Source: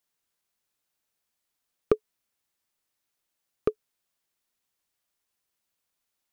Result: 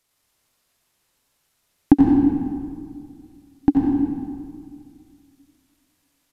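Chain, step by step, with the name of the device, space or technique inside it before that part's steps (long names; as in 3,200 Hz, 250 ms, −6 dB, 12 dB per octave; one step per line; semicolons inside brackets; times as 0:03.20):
monster voice (pitch shifter −7 semitones; low-shelf EQ 120 Hz +6.5 dB; single-tap delay 89 ms −7 dB; convolution reverb RT60 2.1 s, pre-delay 68 ms, DRR −1 dB)
level +9 dB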